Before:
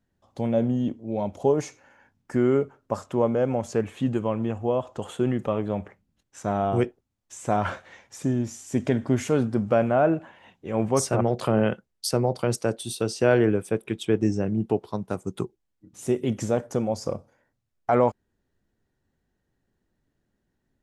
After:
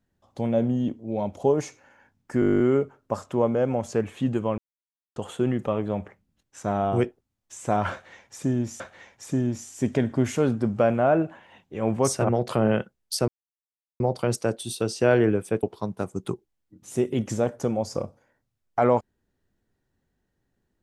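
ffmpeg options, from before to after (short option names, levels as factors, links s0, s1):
-filter_complex "[0:a]asplit=16[s0][s1][s2][s3][s4][s5][s6][s7][s8][s9][s10][s11][s12][s13][s14][s15];[s0]atrim=end=2.422[s16];[s1]atrim=start=2.398:end=2.422[s17];[s2]atrim=start=2.398:end=2.422[s18];[s3]atrim=start=2.398:end=2.422[s19];[s4]atrim=start=2.398:end=2.422[s20];[s5]atrim=start=2.398:end=2.422[s21];[s6]atrim=start=2.398:end=2.422[s22];[s7]atrim=start=2.398:end=2.422[s23];[s8]atrim=start=2.398:end=2.422[s24];[s9]atrim=start=2.398:end=2.422[s25];[s10]atrim=start=2.398:end=4.38,asetpts=PTS-STARTPTS,afade=t=out:st=1.978:d=0.004:c=hsin[s26];[s11]atrim=start=4.38:end=4.96,asetpts=PTS-STARTPTS,volume=0[s27];[s12]atrim=start=4.96:end=8.602,asetpts=PTS-STARTPTS,afade=t=in:d=0.004:c=hsin[s28];[s13]atrim=start=7.718:end=12.2,asetpts=PTS-STARTPTS,afade=t=out:st=4.478:d=0.004:c=hsin,apad=pad_dur=0.72[s29];[s14]atrim=start=12.2:end=13.832,asetpts=PTS-STARTPTS,afade=t=in:d=0.004:c=hsin[s30];[s15]atrim=start=14.738[s31];[s16][s17]acrossfade=d=0.004:c1=hsin:c2=hsin[s32];[s32][s18]acrossfade=d=0.004:c1=hsin:c2=hsin[s33];[s33][s19]acrossfade=d=0.004:c1=hsin:c2=hsin[s34];[s34][s20]acrossfade=d=0.004:c1=hsin:c2=hsin[s35];[s35][s21]acrossfade=d=0.004:c1=hsin:c2=hsin[s36];[s36][s22]acrossfade=d=0.004:c1=hsin:c2=hsin[s37];[s37][s23]acrossfade=d=0.004:c1=hsin:c2=hsin[s38];[s38][s24]acrossfade=d=0.004:c1=hsin:c2=hsin[s39];[s39][s25]acrossfade=d=0.004:c1=hsin:c2=hsin[s40];[s26][s27][s28]concat=n=3:v=0:a=1[s41];[s40][s41]acrossfade=d=0.004:c1=hsin:c2=hsin[s42];[s29][s30]concat=n=2:v=0:a=1[s43];[s42][s43]acrossfade=d=0.004:c1=hsin:c2=hsin[s44];[s44][s31]acrossfade=d=0.004:c1=hsin:c2=hsin"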